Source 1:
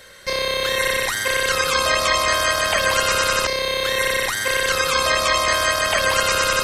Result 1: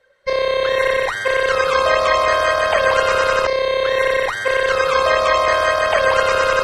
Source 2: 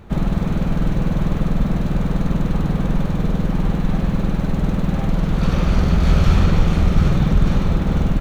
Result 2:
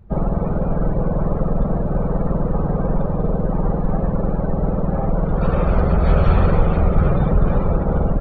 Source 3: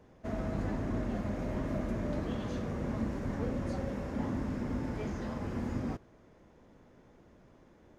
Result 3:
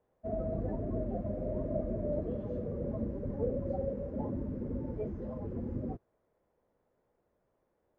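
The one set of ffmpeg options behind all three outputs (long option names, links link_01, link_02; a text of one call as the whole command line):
ffmpeg -i in.wav -af "afftdn=noise_reduction=20:noise_floor=-32,lowpass=frequency=1100:poles=1,lowshelf=frequency=370:width_type=q:width=1.5:gain=-7,volume=6.5dB" out.wav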